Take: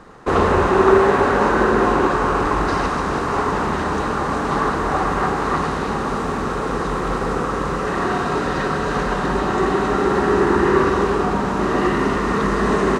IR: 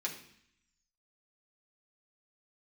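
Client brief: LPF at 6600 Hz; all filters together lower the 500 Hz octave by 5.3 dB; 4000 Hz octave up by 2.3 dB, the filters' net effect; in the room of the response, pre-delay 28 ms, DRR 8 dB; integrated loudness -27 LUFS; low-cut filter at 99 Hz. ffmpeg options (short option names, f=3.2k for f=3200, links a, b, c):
-filter_complex "[0:a]highpass=99,lowpass=6.6k,equalizer=f=500:t=o:g=-7.5,equalizer=f=4k:t=o:g=3.5,asplit=2[a][b];[1:a]atrim=start_sample=2205,adelay=28[c];[b][c]afir=irnorm=-1:irlink=0,volume=-10dB[d];[a][d]amix=inputs=2:normalize=0,volume=-6.5dB"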